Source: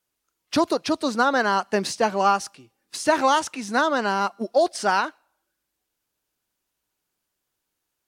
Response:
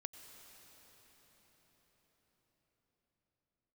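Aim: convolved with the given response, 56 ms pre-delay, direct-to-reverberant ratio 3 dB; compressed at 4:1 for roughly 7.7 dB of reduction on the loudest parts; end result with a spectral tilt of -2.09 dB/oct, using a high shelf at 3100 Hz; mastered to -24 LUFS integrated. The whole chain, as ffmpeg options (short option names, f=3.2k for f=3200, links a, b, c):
-filter_complex "[0:a]highshelf=f=3.1k:g=7.5,acompressor=threshold=-23dB:ratio=4,asplit=2[a][b];[1:a]atrim=start_sample=2205,adelay=56[c];[b][c]afir=irnorm=-1:irlink=0,volume=1dB[d];[a][d]amix=inputs=2:normalize=0,volume=1.5dB"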